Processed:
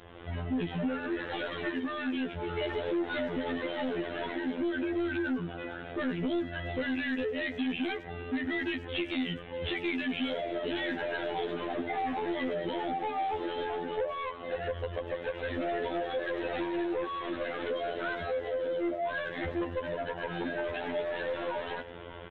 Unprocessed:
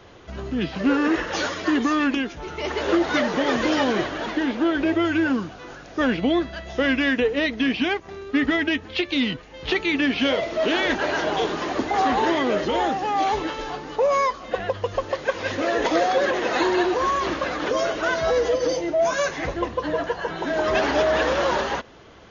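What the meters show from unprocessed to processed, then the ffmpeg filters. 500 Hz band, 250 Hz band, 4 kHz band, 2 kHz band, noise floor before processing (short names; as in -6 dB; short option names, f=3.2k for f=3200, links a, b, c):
-10.0 dB, -10.0 dB, -12.0 dB, -11.0 dB, -42 dBFS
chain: -filter_complex "[0:a]acompressor=threshold=-29dB:ratio=6,afftfilt=real='hypot(re,im)*cos(PI*b)':imag='0':win_size=2048:overlap=0.75,asplit=2[a][b];[b]adelay=590,lowpass=f=1.7k:p=1,volume=-21dB,asplit=2[c][d];[d]adelay=590,lowpass=f=1.7k:p=1,volume=0.18[e];[c][e]amix=inputs=2:normalize=0[f];[a][f]amix=inputs=2:normalize=0,aeval=exprs='val(0)+0.000355*(sin(2*PI*60*n/s)+sin(2*PI*2*60*n/s)/2+sin(2*PI*3*60*n/s)/3+sin(2*PI*4*60*n/s)/4+sin(2*PI*5*60*n/s)/5)':c=same,aresample=8000,asoftclip=type=tanh:threshold=-32dB,aresample=44100,adynamicequalizer=threshold=0.00112:dfrequency=1100:dqfactor=3.3:tfrequency=1100:tqfactor=3.3:attack=5:release=100:ratio=0.375:range=3.5:mode=cutabove:tftype=bell,dynaudnorm=f=150:g=3:m=6.5dB,asplit=2[g][h];[h]adelay=100,highpass=300,lowpass=3.4k,asoftclip=type=hard:threshold=-29dB,volume=-17dB[i];[g][i]amix=inputs=2:normalize=0"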